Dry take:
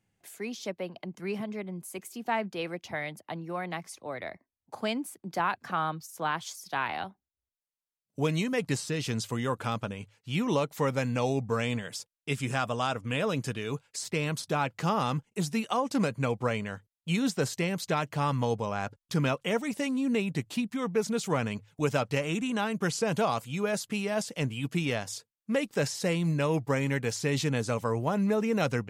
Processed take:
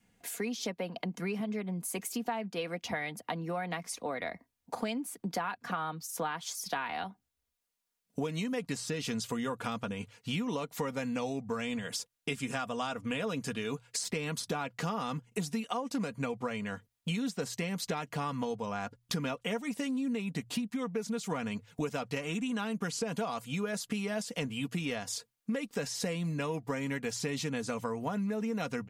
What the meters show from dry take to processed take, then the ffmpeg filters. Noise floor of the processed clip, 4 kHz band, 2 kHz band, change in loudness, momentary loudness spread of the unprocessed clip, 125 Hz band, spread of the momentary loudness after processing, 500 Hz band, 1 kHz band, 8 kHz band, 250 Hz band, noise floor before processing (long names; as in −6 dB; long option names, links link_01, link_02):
−84 dBFS, −2.5 dB, −4.5 dB, −4.5 dB, 10 LU, −7.5 dB, 3 LU, −6.0 dB, −5.5 dB, −0.5 dB, −3.5 dB, below −85 dBFS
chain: -af "bandreject=frequency=60:width_type=h:width=6,bandreject=frequency=120:width_type=h:width=6,adynamicequalizer=threshold=0.01:dfrequency=450:dqfactor=2.4:tfrequency=450:tqfactor=2.4:attack=5:release=100:ratio=0.375:range=1.5:mode=cutabove:tftype=bell,aecho=1:1:4.2:0.49,acompressor=threshold=-40dB:ratio=6,volume=7.5dB"